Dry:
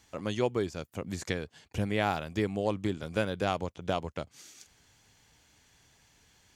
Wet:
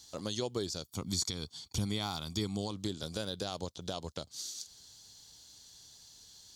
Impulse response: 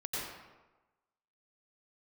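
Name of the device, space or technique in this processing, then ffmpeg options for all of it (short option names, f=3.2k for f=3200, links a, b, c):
over-bright horn tweeter: -filter_complex "[0:a]highshelf=f=3.1k:t=q:w=3:g=10,alimiter=limit=-20.5dB:level=0:latency=1:release=128,asettb=1/sr,asplit=3[a][b][c];[a]atrim=end=0.854[d];[b]atrim=start=0.85:end=2.71,asetpts=PTS-STARTPTS,afade=t=in:d=0.004:c=qsin,afade=t=out:st=1.856:d=0.004:c=qsin,aecho=1:1:0.9:0.57,atrim=end_sample=82026[e];[c]atrim=start=2.706[f];[d][e]acrossfade=d=0.004:c1=hsin:c2=qsin[g];[g][f]acrossfade=d=0.004:c1=qsin:c2=hsin,volume=-2.5dB"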